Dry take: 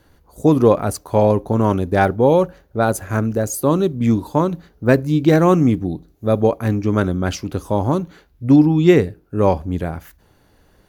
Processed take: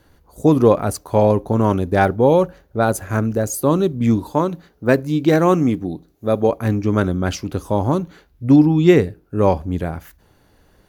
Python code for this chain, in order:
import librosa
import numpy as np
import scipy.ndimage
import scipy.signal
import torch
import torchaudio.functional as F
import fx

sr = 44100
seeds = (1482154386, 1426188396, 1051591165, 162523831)

y = fx.low_shelf(x, sr, hz=120.0, db=-10.0, at=(4.33, 6.49))